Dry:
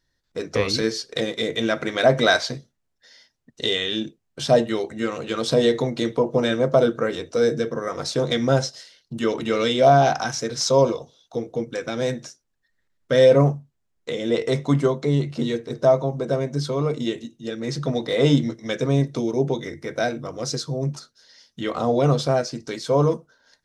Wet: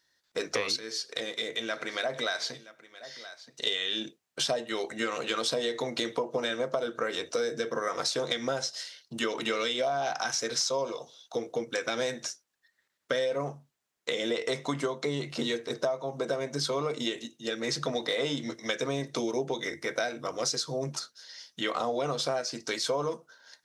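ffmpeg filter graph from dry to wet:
-filter_complex "[0:a]asettb=1/sr,asplit=3[a][b][c];[a]atrim=end=0.764[d];[b]atrim=start=0.76:end=3.67,asetpts=PTS-STARTPTS,afade=t=in:d=0.004:c=qsin,afade=t=out:st=2.906:d=0.004:c=qsin,acompressor=threshold=-46dB:ratio=1.5:attack=3.2:release=140:knee=1:detection=peak,aecho=1:1:973:0.112,atrim=end_sample=128331[e];[c]atrim=start=3.666[f];[d][e]acrossfade=d=0.004:c1=hsin:c2=qsin[g];[g][f]acrossfade=d=0.004:c1=qsin:c2=hsin,highpass=f=920:p=1,acompressor=threshold=-31dB:ratio=16,volume=5dB"

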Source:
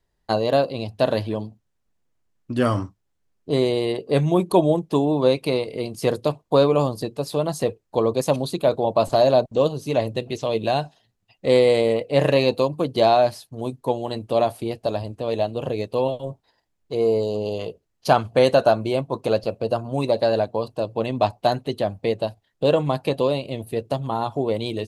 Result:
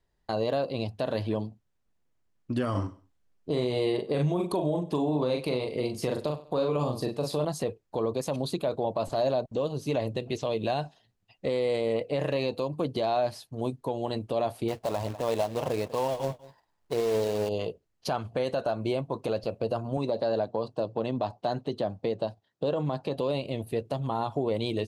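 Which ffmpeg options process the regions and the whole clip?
-filter_complex "[0:a]asettb=1/sr,asplit=3[a][b][c];[a]atrim=end=2.714[d];[b]atrim=start=2.71:end=7.45,asetpts=PTS-STARTPTS,afade=t=in:d=0.004:c=qsin,afade=t=out:st=4.736:d=0.004:c=qsin,asplit=2[e][f];[f]adelay=40,volume=-5dB[g];[e][g]amix=inputs=2:normalize=0,atrim=end_sample=209034,aecho=1:1:97|194:0.075|0.0217,atrim=end_sample=209034[h];[c]atrim=start=7.446[i];[d][h]acrossfade=d=0.004:c1=hsin:c2=qsin[j];[j][i]acrossfade=d=0.004:c1=qsin:c2=hsin,asettb=1/sr,asplit=3[k][l][m];[k]atrim=end=14.684[n];[l]atrim=start=14.68:end=17.49,asetpts=PTS-STARTPTS,afade=t=in:d=0.004:c=qsin,afade=t=out:st=2.806:d=0.004:c=qsin,equalizer=f=1k:w=1.2:g=10,acrusher=bits=3:mode=log:mix=0:aa=0.000001,aecho=1:1:196:0.0944,atrim=end_sample=123921[o];[m]atrim=start=17.486[p];[n][o]acrossfade=d=0.004:c1=hsin:c2=qsin[q];[q][p]acrossfade=d=0.004:c1=qsin:c2=hsin,asettb=1/sr,asplit=3[r][s][t];[r]atrim=end=19.974[u];[s]atrim=start=19.97:end=23.18,asetpts=PTS-STARTPTS,afade=t=in:d=0.004:c=qsin,afade=t=out:st=3.206:d=0.004:c=qsin,acompressor=threshold=-22dB:ratio=2:attack=3.2:release=140:knee=1:detection=peak,highpass=110,lowpass=6.7k,equalizer=f=2.3k:t=o:w=0.81:g=-6.5[v];[t]atrim=start=23.176[w];[u][v]acrossfade=d=0.004:c1=hsin:c2=qsin[x];[x][w]acrossfade=d=0.004:c1=qsin:c2=hsin,highshelf=f=8.3k:g=-6.5,acompressor=threshold=-19dB:ratio=6,alimiter=limit=-16dB:level=0:latency=1:release=48,volume=-2dB"

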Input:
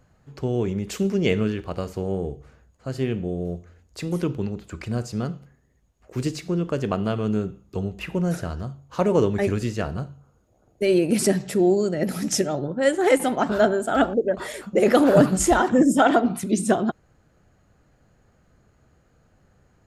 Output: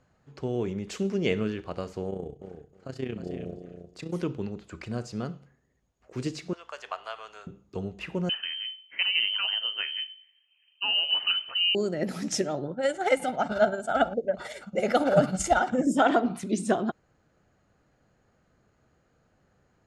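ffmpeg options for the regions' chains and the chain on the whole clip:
-filter_complex "[0:a]asettb=1/sr,asplit=3[a][b][c];[a]atrim=end=2.104[d];[b]atrim=start=2.1:end=4.14,asetpts=PTS-STARTPTS,afade=t=in:d=0.004:c=qsin,afade=t=out:st=2.036:d=0.004:c=qsin,tremolo=f=30:d=0.71,aecho=1:1:314|628|942:0.398|0.0637|0.0102,atrim=end_sample=89964[e];[c]atrim=start=4.136[f];[d][e]acrossfade=d=0.004:c1=hsin:c2=qsin[g];[g][f]acrossfade=d=0.004:c1=qsin:c2=hsin,asettb=1/sr,asplit=3[h][i][j];[h]atrim=end=6.534[k];[i]atrim=start=6.53:end=7.47,asetpts=PTS-STARTPTS,afade=t=in:d=0.004:c=qsin,afade=t=out:st=0.936:d=0.004:c=qsin,highpass=f=760:w=0.5412,highpass=f=760:w=1.3066,aeval=exprs='val(0)+0.000794*(sin(2*PI*60*n/s)+sin(2*PI*2*60*n/s)/2+sin(2*PI*3*60*n/s)/3+sin(2*PI*4*60*n/s)/4+sin(2*PI*5*60*n/s)/5)':c=same[l];[j]atrim=start=7.466[m];[k][l]acrossfade=d=0.004:c1=hsin:c2=qsin[n];[n][m]acrossfade=d=0.004:c1=qsin:c2=hsin,asettb=1/sr,asplit=3[o][p][q];[o]atrim=end=8.294[r];[p]atrim=start=8.29:end=11.75,asetpts=PTS-STARTPTS,afade=t=in:d=0.004:c=qsin,afade=t=out:st=3.456:d=0.004:c=qsin,equalizer=f=440:w=2.3:g=-7,lowpass=f=2.7k:t=q:w=0.5098,lowpass=f=2.7k:t=q:w=0.6013,lowpass=f=2.7k:t=q:w=0.9,lowpass=f=2.7k:t=q:w=2.563,afreqshift=-3200[s];[q]atrim=start=11.746[t];[r][s]acrossfade=d=0.004:c1=hsin:c2=qsin[u];[u][t]acrossfade=d=0.004:c1=qsin:c2=hsin,asettb=1/sr,asplit=3[v][w][x];[v]atrim=end=12.744[y];[w]atrim=start=12.74:end=15.87,asetpts=PTS-STARTPTS,afade=t=in:d=0.004:c=qsin,afade=t=out:st=3.126:d=0.004:c=qsin,bandreject=f=1k:w=15,aecho=1:1:1.4:0.6,atrim=end_sample=138033,tremolo=f=18:d=0.5[z];[x]atrim=start=15.866[aa];[y][z]acrossfade=d=0.004:c1=hsin:c2=qsin[ab];[ab][aa]acrossfade=d=0.004:c1=qsin:c2=hsin,lowpass=7.2k,lowshelf=f=110:g=-9,volume=-4dB"

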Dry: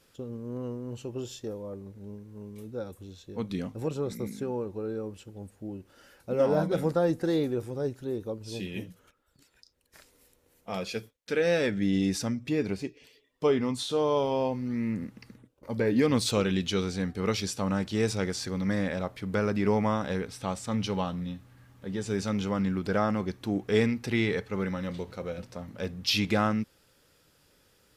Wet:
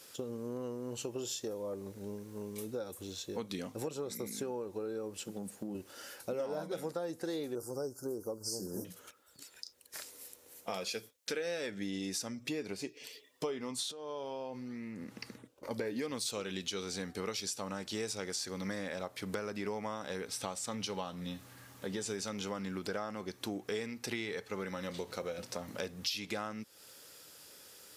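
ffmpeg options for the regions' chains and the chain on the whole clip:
-filter_complex "[0:a]asettb=1/sr,asplit=3[a][b][c];[a]atrim=end=5.224[d];[b]atrim=start=5.22:end=5.75,asetpts=PTS-STARTPTS,afade=t=in:d=0.004:c=qsin,afade=t=out:st=0.526:d=0.004:c=qsin,highpass=130,equalizer=f=190:t=o:w=0.54:g=11,acompressor=threshold=-35dB:ratio=6:attack=3.2:release=140:knee=1:detection=peak[e];[c]atrim=start=5.746[f];[d][e]acrossfade=d=0.004:c1=hsin:c2=qsin[g];[g][f]acrossfade=d=0.004:c1=qsin:c2=hsin,asettb=1/sr,asplit=3[h][i][j];[h]atrim=end=7.554[k];[i]atrim=start=7.55:end=8.85,asetpts=PTS-STARTPTS,afade=t=in:d=0.004:c=qsin,afade=t=out:st=1.296:d=0.004:c=qsin,asuperstop=centerf=2700:order=20:qfactor=0.88,highshelf=f=5.4k:g=6.5[l];[j]atrim=start=8.846[m];[k][l]acrossfade=d=0.004:c1=hsin:c2=qsin[n];[n][m]acrossfade=d=0.004:c1=qsin:c2=hsin,asettb=1/sr,asplit=3[o][p][q];[o]atrim=end=13.914[r];[p]atrim=start=13.91:end=15.71,asetpts=PTS-STARTPTS,afade=t=in:d=0.004:c=qsin,afade=t=out:st=1.796:d=0.004:c=qsin,highshelf=f=7.4k:g=-8.5,acompressor=threshold=-41dB:ratio=6:attack=3.2:release=140:knee=1:detection=peak[s];[q]atrim=start=15.706[t];[r][s]acrossfade=d=0.004:c1=hsin:c2=qsin[u];[u][t]acrossfade=d=0.004:c1=qsin:c2=hsin,highpass=74,bass=f=250:g=-10,treble=f=4k:g=8,acompressor=threshold=-42dB:ratio=6,volume=6dB"

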